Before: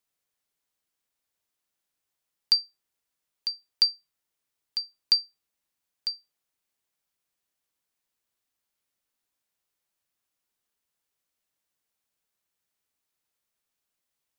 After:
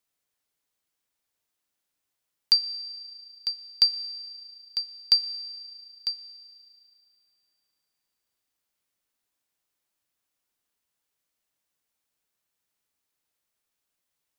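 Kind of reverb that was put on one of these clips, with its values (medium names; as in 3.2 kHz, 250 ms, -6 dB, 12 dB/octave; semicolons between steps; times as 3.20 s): FDN reverb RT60 2.4 s, low-frequency decay 1.05×, high-frequency decay 1×, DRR 13 dB; trim +1 dB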